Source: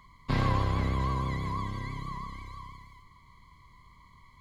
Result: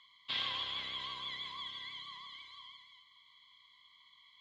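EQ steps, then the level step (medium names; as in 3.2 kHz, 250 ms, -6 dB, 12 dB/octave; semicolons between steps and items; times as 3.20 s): resonant low-pass 3.3 kHz, resonance Q 7.7; differentiator; +2.5 dB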